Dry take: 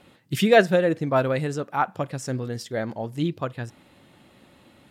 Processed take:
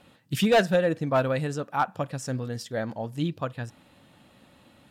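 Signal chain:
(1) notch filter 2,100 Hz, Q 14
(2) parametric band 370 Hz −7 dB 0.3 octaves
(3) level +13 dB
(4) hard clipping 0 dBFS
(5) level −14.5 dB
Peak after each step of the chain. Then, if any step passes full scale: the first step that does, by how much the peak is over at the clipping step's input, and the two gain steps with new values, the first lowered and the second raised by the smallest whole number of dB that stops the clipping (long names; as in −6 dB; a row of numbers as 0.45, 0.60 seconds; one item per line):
−4.0, −5.0, +8.0, 0.0, −14.5 dBFS
step 3, 8.0 dB
step 3 +5 dB, step 5 −6.5 dB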